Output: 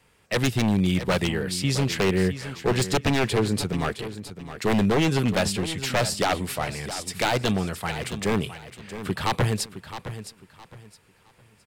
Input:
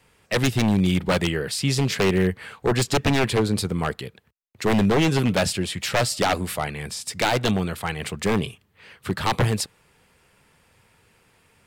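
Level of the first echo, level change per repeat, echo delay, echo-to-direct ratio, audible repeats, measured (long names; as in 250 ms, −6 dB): −12.0 dB, −11.5 dB, 664 ms, −11.5 dB, 3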